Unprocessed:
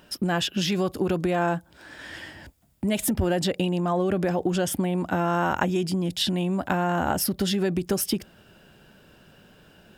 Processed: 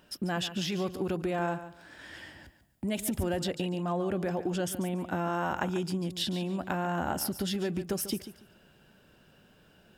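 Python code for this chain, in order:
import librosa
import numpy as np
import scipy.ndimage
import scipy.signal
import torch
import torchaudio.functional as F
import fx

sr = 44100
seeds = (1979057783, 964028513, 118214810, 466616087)

y = fx.echo_feedback(x, sr, ms=143, feedback_pct=22, wet_db=-12.5)
y = y * 10.0 ** (-7.0 / 20.0)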